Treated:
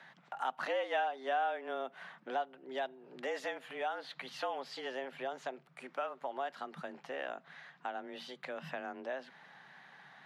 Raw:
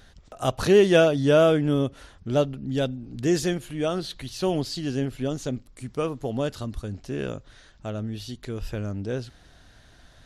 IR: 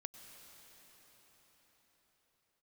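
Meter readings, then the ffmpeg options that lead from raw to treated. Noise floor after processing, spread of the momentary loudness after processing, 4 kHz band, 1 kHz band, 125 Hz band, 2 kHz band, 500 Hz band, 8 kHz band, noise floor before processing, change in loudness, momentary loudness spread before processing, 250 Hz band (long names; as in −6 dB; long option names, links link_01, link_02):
−64 dBFS, 15 LU, −13.0 dB, −2.5 dB, −33.5 dB, −7.0 dB, −16.0 dB, −21.5 dB, −54 dBFS, −14.5 dB, 17 LU, −24.5 dB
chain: -filter_complex "[0:a]acrossover=split=550 2600:gain=0.0794 1 0.0708[link_01][link_02][link_03];[link_01][link_02][link_03]amix=inputs=3:normalize=0,afreqshift=130,acompressor=threshold=-43dB:ratio=2.5,volume=4.5dB"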